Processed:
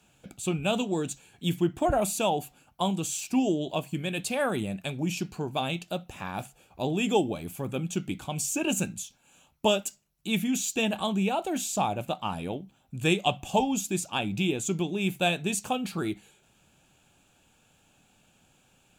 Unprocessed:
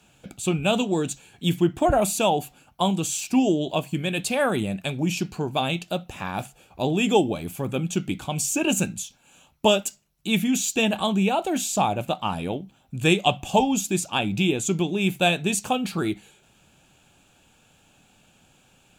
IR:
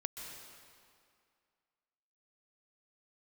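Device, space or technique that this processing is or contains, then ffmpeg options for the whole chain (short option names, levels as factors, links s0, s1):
exciter from parts: -filter_complex "[0:a]asplit=2[s0][s1];[s1]highpass=f=3400:p=1,asoftclip=type=tanh:threshold=0.0282,highpass=3900,volume=0.237[s2];[s0][s2]amix=inputs=2:normalize=0,volume=0.562"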